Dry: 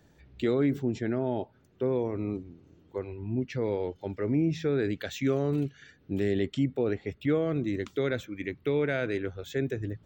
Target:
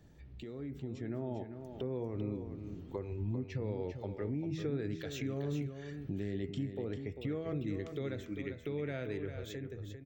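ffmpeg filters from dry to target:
-af "lowshelf=f=220:g=8.5,bandreject=f=1500:w=16,bandreject=f=80.76:t=h:w=4,bandreject=f=161.52:t=h:w=4,bandreject=f=242.28:t=h:w=4,bandreject=f=323.04:t=h:w=4,bandreject=f=403.8:t=h:w=4,bandreject=f=484.56:t=h:w=4,bandreject=f=565.32:t=h:w=4,bandreject=f=646.08:t=h:w=4,bandreject=f=726.84:t=h:w=4,bandreject=f=807.6:t=h:w=4,bandreject=f=888.36:t=h:w=4,bandreject=f=969.12:t=h:w=4,bandreject=f=1049.88:t=h:w=4,bandreject=f=1130.64:t=h:w=4,bandreject=f=1211.4:t=h:w=4,bandreject=f=1292.16:t=h:w=4,bandreject=f=1372.92:t=h:w=4,bandreject=f=1453.68:t=h:w=4,bandreject=f=1534.44:t=h:w=4,bandreject=f=1615.2:t=h:w=4,bandreject=f=1695.96:t=h:w=4,bandreject=f=1776.72:t=h:w=4,bandreject=f=1857.48:t=h:w=4,bandreject=f=1938.24:t=h:w=4,bandreject=f=2019:t=h:w=4,bandreject=f=2099.76:t=h:w=4,bandreject=f=2180.52:t=h:w=4,bandreject=f=2261.28:t=h:w=4,bandreject=f=2342.04:t=h:w=4,bandreject=f=2422.8:t=h:w=4,bandreject=f=2503.56:t=h:w=4,bandreject=f=2584.32:t=h:w=4,bandreject=f=2665.08:t=h:w=4,bandreject=f=2745.84:t=h:w=4,bandreject=f=2826.6:t=h:w=4,acompressor=threshold=0.00631:ratio=2.5,alimiter=level_in=2.99:limit=0.0631:level=0:latency=1:release=385,volume=0.335,dynaudnorm=f=240:g=7:m=2.99,aecho=1:1:396:0.376,volume=0.631"

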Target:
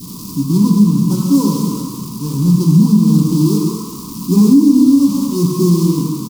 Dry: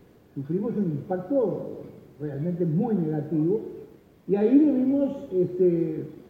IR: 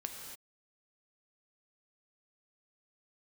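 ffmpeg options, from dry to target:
-filter_complex "[0:a]aeval=exprs='val(0)+0.5*0.02*sgn(val(0))':c=same,adynamicequalizer=threshold=0.00891:dfrequency=1100:dqfactor=0.84:tfrequency=1100:tqfactor=0.84:attack=5:release=100:ratio=0.375:range=3:mode=boostabove:tftype=bell,asplit=2[s0][s1];[s1]acrusher=bits=4:mix=0:aa=0.000001,volume=0.335[s2];[s0][s2]amix=inputs=2:normalize=0,firequalizer=gain_entry='entry(100,0);entry(160,13);entry(250,12);entry(360,-3);entry(700,-29);entry(1000,10);entry(1600,-25);entry(2500,-7);entry(4800,14)':delay=0.05:min_phase=1[s3];[1:a]atrim=start_sample=2205,asetrate=52920,aresample=44100[s4];[s3][s4]afir=irnorm=-1:irlink=0,alimiter=limit=0.447:level=0:latency=1:release=293,volume=1.88"

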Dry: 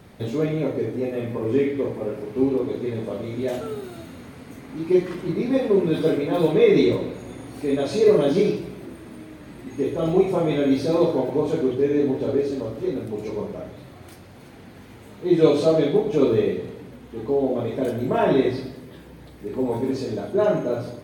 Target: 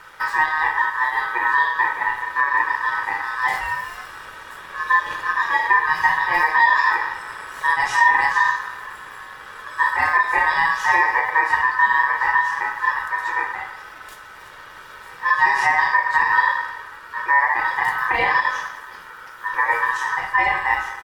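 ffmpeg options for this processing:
-af "alimiter=limit=0.211:level=0:latency=1:release=206,aecho=1:1:2.1:0.47,aeval=exprs='val(0)*sin(2*PI*1400*n/s)':c=same,volume=2.11"

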